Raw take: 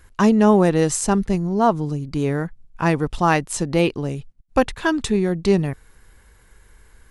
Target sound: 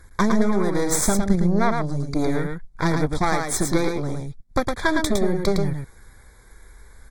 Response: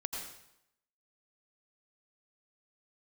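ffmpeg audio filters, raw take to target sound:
-af "acompressor=threshold=-17dB:ratio=16,aeval=exprs='0.422*(cos(1*acos(clip(val(0)/0.422,-1,1)))-cos(1*PI/2))+0.00841*(cos(5*acos(clip(val(0)/0.422,-1,1)))-cos(5*PI/2))+0.075*(cos(6*acos(clip(val(0)/0.422,-1,1)))-cos(6*PI/2))':c=same,aphaser=in_gain=1:out_gain=1:delay=3.1:decay=0.21:speed=0.68:type=triangular,asuperstop=centerf=2800:order=12:qfactor=3.1,aecho=1:1:110:0.596" -ar 44100 -c:a aac -b:a 64k

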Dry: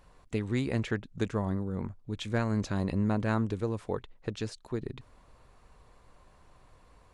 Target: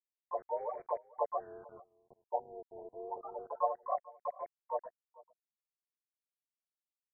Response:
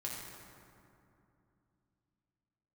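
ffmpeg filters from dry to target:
-filter_complex "[0:a]aeval=exprs='val(0)+0.5*0.00841*sgn(val(0))':c=same,afftfilt=real='re*gte(hypot(re,im),0.178)':imag='im*gte(hypot(re,im),0.178)':win_size=1024:overlap=0.75,aecho=1:1:6.1:0.67,highpass=f=340:t=q:w=0.5412,highpass=f=340:t=q:w=1.307,lowpass=f=3.1k:t=q:w=0.5176,lowpass=f=3.1k:t=q:w=0.7071,lowpass=f=3.1k:t=q:w=1.932,afreqshift=250,asplit=4[a][b][c][d];[b]asetrate=35002,aresample=44100,atempo=1.25992,volume=-6dB[e];[c]asetrate=37084,aresample=44100,atempo=1.18921,volume=-16dB[f];[d]asetrate=66075,aresample=44100,atempo=0.66742,volume=-3dB[g];[a][e][f][g]amix=inputs=4:normalize=0,aeval=exprs='val(0)*gte(abs(val(0)),0.00335)':c=same,asplit=2[h][i];[i]aecho=0:1:442:0.0794[j];[h][j]amix=inputs=2:normalize=0,afftfilt=real='re*lt(b*sr/1024,950*pow(2400/950,0.5+0.5*sin(2*PI*0.29*pts/sr)))':imag='im*lt(b*sr/1024,950*pow(2400/950,0.5+0.5*sin(2*PI*0.29*pts/sr)))':win_size=1024:overlap=0.75,volume=-1.5dB"

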